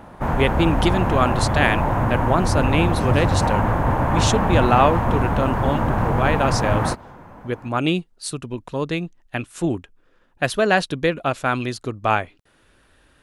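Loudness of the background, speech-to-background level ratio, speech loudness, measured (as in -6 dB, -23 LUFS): -21.0 LUFS, -2.0 dB, -23.0 LUFS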